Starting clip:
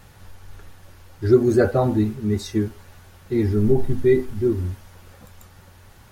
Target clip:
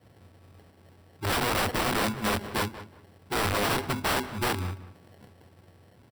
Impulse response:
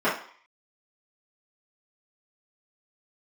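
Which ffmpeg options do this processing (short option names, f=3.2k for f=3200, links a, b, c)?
-filter_complex "[0:a]adynamicequalizer=threshold=0.0355:dfrequency=220:dqfactor=1.6:tfrequency=220:tqfactor=1.6:attack=5:release=100:ratio=0.375:range=2:mode=boostabove:tftype=bell,acrusher=samples=36:mix=1:aa=0.000001,highpass=f=78:w=0.5412,highpass=f=78:w=1.3066,aeval=exprs='(mod(5.62*val(0)+1,2)-1)/5.62':c=same,bandreject=f=6.6k:w=5.2,asplit=2[a][b];[b]adelay=185,lowpass=f=2.8k:p=1,volume=-14dB,asplit=2[c][d];[d]adelay=185,lowpass=f=2.8k:p=1,volume=0.21[e];[a][c][e]amix=inputs=3:normalize=0,volume=-6dB"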